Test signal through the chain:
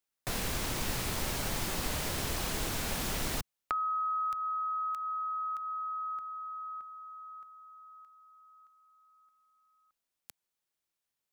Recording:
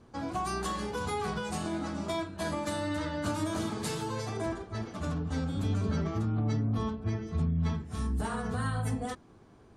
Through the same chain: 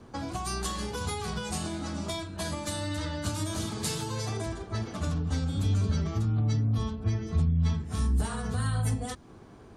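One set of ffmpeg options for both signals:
-filter_complex "[0:a]acrossover=split=130|3000[a][b][c];[b]acompressor=threshold=-41dB:ratio=6[d];[a][d][c]amix=inputs=3:normalize=0,volume=6.5dB"

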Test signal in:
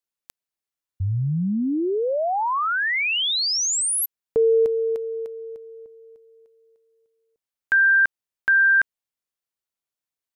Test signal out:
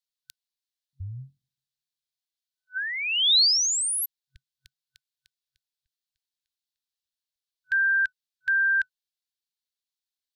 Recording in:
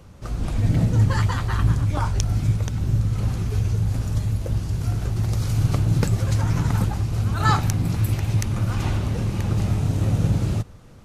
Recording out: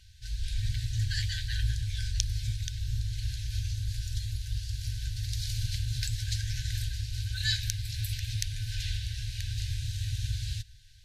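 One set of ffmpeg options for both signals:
-af "afftfilt=real='re*(1-between(b*sr/4096,130,1500))':imag='im*(1-between(b*sr/4096,130,1500))':win_size=4096:overlap=0.75,equalizer=f=125:t=o:w=1:g=-11,equalizer=f=250:t=o:w=1:g=11,equalizer=f=500:t=o:w=1:g=-11,equalizer=f=1k:t=o:w=1:g=9,equalizer=f=2k:t=o:w=1:g=-7,equalizer=f=4k:t=o:w=1:g=11,volume=-5dB"

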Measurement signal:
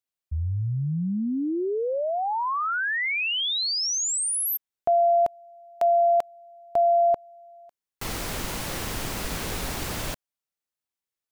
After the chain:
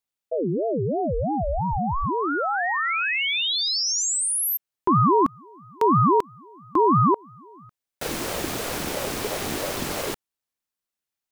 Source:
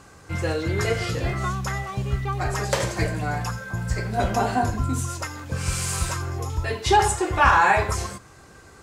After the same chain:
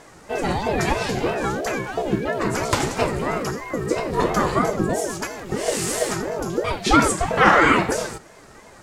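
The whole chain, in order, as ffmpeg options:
-af "aeval=exprs='val(0)*sin(2*PI*410*n/s+410*0.4/3*sin(2*PI*3*n/s))':c=same,volume=5dB"

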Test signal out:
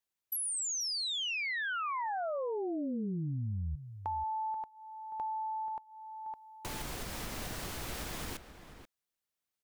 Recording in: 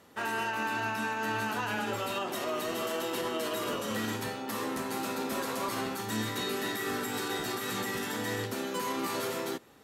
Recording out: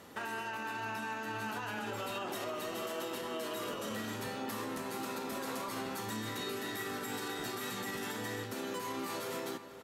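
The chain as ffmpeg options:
-filter_complex "[0:a]alimiter=level_in=7.5dB:limit=-24dB:level=0:latency=1:release=472,volume=-7.5dB,acompressor=threshold=-41dB:ratio=2.5,asplit=2[a][b];[b]adelay=484,volume=-11dB,highshelf=f=4k:g=-10.9[c];[a][c]amix=inputs=2:normalize=0,volume=4.5dB"

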